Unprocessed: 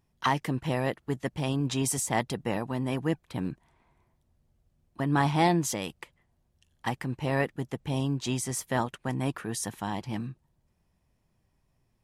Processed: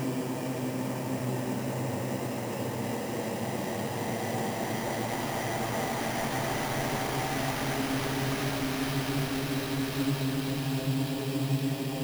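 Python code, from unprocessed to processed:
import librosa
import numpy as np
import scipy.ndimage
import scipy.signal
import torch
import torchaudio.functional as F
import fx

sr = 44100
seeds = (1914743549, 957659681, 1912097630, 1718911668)

y = x[::-1].copy()
y = fx.paulstretch(y, sr, seeds[0], factor=8.8, window_s=1.0, from_s=9.2)
y = fx.sample_hold(y, sr, seeds[1], rate_hz=7900.0, jitter_pct=0)
y = fx.dmg_noise_colour(y, sr, seeds[2], colour='white', level_db=-49.0)
y = F.gain(torch.from_numpy(y), -1.5).numpy()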